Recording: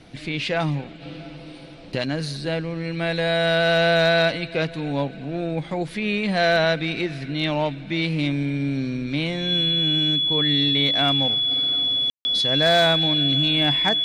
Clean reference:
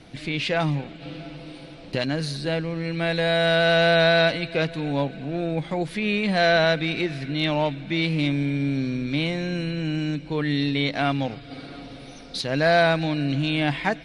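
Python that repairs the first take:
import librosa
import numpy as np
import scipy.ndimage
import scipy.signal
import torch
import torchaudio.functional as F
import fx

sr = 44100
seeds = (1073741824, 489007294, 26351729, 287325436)

y = fx.fix_declip(x, sr, threshold_db=-10.5)
y = fx.notch(y, sr, hz=3400.0, q=30.0)
y = fx.fix_ambience(y, sr, seeds[0], print_start_s=1.43, print_end_s=1.93, start_s=12.1, end_s=12.25)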